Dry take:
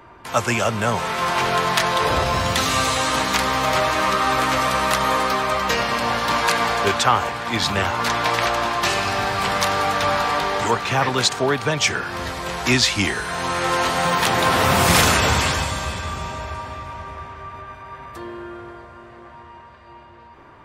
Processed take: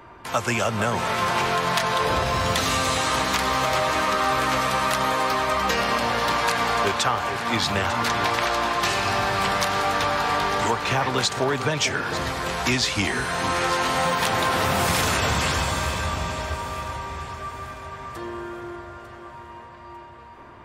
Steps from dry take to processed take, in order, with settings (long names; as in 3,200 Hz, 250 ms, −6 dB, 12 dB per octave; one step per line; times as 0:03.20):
downward compressor, threshold −19 dBFS, peak gain reduction 8.5 dB
delay that swaps between a low-pass and a high-pass 449 ms, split 1,800 Hz, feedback 64%, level −9 dB